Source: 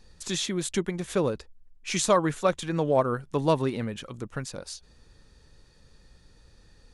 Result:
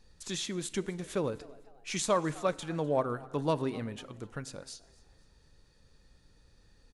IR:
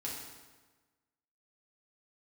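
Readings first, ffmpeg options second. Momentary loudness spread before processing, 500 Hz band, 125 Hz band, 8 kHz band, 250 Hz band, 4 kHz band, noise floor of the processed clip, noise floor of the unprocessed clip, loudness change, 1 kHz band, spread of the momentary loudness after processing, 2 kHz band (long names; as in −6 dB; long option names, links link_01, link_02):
15 LU, −6.0 dB, −6.5 dB, −6.0 dB, −6.0 dB, −6.0 dB, −64 dBFS, −58 dBFS, −6.0 dB, −6.0 dB, 15 LU, −6.0 dB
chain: -filter_complex "[0:a]asplit=4[link_01][link_02][link_03][link_04];[link_02]adelay=252,afreqshift=130,volume=-22.5dB[link_05];[link_03]adelay=504,afreqshift=260,volume=-31.1dB[link_06];[link_04]adelay=756,afreqshift=390,volume=-39.8dB[link_07];[link_01][link_05][link_06][link_07]amix=inputs=4:normalize=0,asplit=2[link_08][link_09];[1:a]atrim=start_sample=2205[link_10];[link_09][link_10]afir=irnorm=-1:irlink=0,volume=-16dB[link_11];[link_08][link_11]amix=inputs=2:normalize=0,volume=-7dB"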